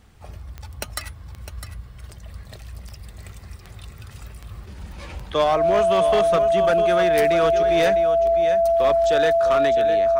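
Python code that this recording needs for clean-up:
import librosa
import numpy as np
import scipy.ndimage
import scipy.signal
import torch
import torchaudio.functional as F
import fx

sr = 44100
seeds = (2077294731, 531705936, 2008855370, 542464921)

y = fx.fix_declip(x, sr, threshold_db=-12.5)
y = fx.fix_declick_ar(y, sr, threshold=10.0)
y = fx.notch(y, sr, hz=670.0, q=30.0)
y = fx.fix_echo_inverse(y, sr, delay_ms=655, level_db=-10.5)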